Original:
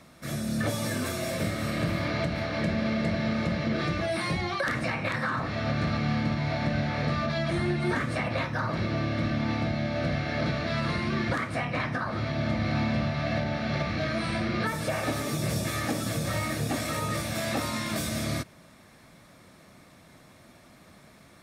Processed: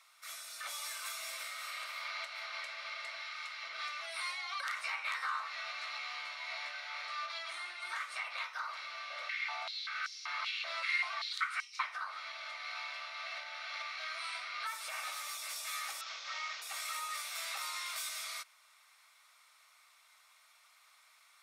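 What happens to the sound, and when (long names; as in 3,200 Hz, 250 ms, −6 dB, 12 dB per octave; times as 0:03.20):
0:03.22–0:03.63: high-pass filter 940 Hz
0:04.75–0:06.71: double-tracking delay 14 ms −3.5 dB
0:09.10–0:11.83: high-pass on a step sequencer 5.2 Hz 510–5,600 Hz
0:16.01–0:16.62: variable-slope delta modulation 32 kbit/s
whole clip: high-pass filter 1,100 Hz 24 dB per octave; notch filter 1,700 Hz, Q 5.7; level −4.5 dB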